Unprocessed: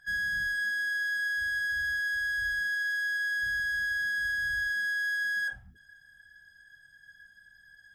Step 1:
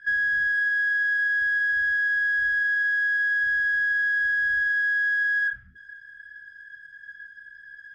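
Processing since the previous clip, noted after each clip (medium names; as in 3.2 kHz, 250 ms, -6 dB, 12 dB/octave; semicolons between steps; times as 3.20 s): FFT filter 430 Hz 0 dB, 810 Hz -17 dB, 1.5 kHz +13 dB, 13 kHz -17 dB; compression, threshold -22 dBFS, peak gain reduction 5.5 dB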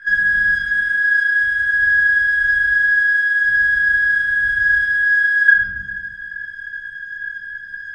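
reverberation RT60 1.1 s, pre-delay 4 ms, DRR -7.5 dB; trim +6.5 dB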